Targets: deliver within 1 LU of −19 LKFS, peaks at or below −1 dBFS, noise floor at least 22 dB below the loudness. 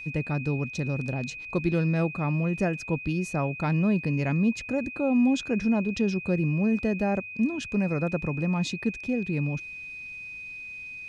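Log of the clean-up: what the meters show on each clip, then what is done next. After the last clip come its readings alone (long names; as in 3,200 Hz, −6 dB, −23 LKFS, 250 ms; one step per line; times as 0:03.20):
interfering tone 2,500 Hz; level of the tone −37 dBFS; integrated loudness −27.5 LKFS; sample peak −13.0 dBFS; target loudness −19.0 LKFS
→ notch filter 2,500 Hz, Q 30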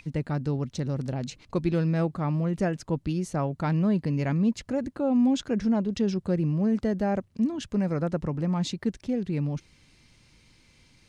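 interfering tone none found; integrated loudness −27.5 LKFS; sample peak −13.5 dBFS; target loudness −19.0 LKFS
→ level +8.5 dB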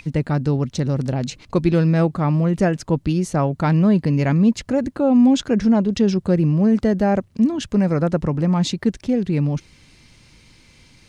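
integrated loudness −19.0 LKFS; sample peak −5.0 dBFS; background noise floor −52 dBFS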